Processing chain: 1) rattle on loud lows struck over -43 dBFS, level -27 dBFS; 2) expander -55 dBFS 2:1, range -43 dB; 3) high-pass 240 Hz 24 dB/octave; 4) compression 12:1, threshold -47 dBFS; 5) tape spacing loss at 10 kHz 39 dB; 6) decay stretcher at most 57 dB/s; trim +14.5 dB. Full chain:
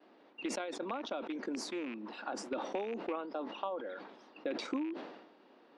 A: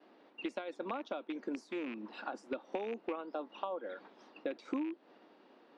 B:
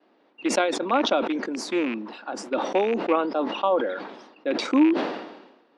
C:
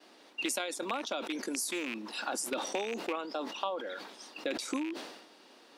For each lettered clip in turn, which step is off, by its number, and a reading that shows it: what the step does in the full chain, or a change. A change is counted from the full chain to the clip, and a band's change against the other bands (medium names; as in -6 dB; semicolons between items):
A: 6, momentary loudness spread change -3 LU; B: 4, mean gain reduction 11.0 dB; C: 5, 8 kHz band +9.0 dB